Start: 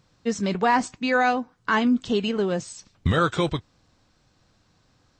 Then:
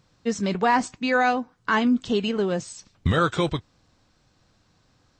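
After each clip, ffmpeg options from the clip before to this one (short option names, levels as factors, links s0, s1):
-af anull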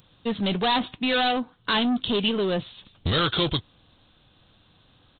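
-af "aresample=8000,asoftclip=type=tanh:threshold=0.0631,aresample=44100,aexciter=amount=6.2:drive=2.9:freq=3100,volume=1.5"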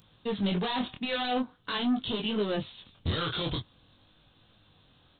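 -af "alimiter=limit=0.0891:level=0:latency=1:release=11,flanger=delay=18.5:depth=6.5:speed=0.46"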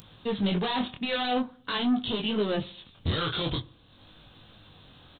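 -filter_complex "[0:a]acompressor=mode=upward:threshold=0.00501:ratio=2.5,asplit=2[s0][s1];[s1]adelay=64,lowpass=f=1300:p=1,volume=0.112,asplit=2[s2][s3];[s3]adelay=64,lowpass=f=1300:p=1,volume=0.51,asplit=2[s4][s5];[s5]adelay=64,lowpass=f=1300:p=1,volume=0.51,asplit=2[s6][s7];[s7]adelay=64,lowpass=f=1300:p=1,volume=0.51[s8];[s0][s2][s4][s6][s8]amix=inputs=5:normalize=0,volume=1.26"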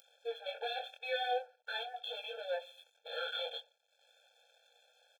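-af "aeval=exprs='sgn(val(0))*max(abs(val(0))-0.00158,0)':c=same,afftfilt=real='re*eq(mod(floor(b*sr/1024/450),2),1)':imag='im*eq(mod(floor(b*sr/1024/450),2),1)':win_size=1024:overlap=0.75,volume=0.596"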